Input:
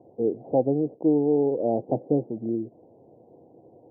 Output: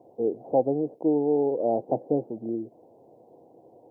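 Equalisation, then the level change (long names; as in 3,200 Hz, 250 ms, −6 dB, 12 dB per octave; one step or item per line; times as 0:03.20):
tilt shelving filter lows −6 dB, about 660 Hz
low-shelf EQ 100 Hz −5.5 dB
+1.5 dB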